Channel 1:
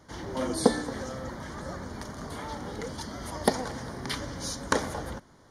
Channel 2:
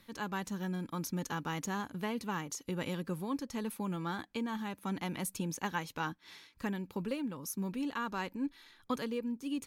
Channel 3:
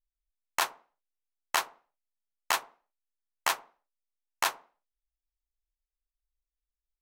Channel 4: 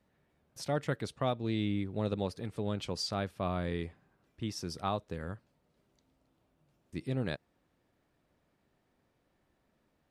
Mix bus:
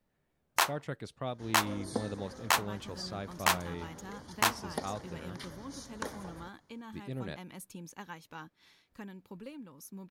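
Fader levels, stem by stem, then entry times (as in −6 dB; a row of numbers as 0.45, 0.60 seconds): −13.0, −9.5, +1.0, −5.5 decibels; 1.30, 2.35, 0.00, 0.00 seconds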